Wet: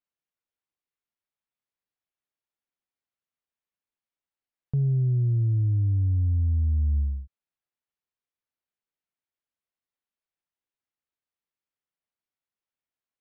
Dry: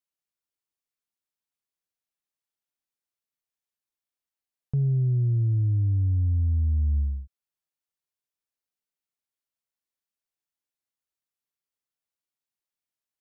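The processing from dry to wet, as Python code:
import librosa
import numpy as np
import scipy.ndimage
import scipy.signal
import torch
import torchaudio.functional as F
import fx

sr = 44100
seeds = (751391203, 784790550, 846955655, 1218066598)

y = scipy.signal.sosfilt(scipy.signal.butter(2, 3100.0, 'lowpass', fs=sr, output='sos'), x)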